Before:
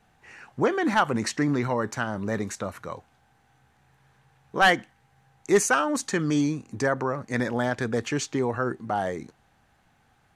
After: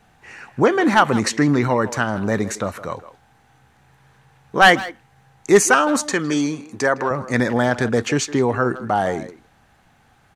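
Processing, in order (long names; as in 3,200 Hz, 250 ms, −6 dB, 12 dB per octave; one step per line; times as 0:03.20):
0:06.12–0:07.11: high-pass filter 380 Hz 6 dB per octave
far-end echo of a speakerphone 160 ms, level −14 dB
level +7.5 dB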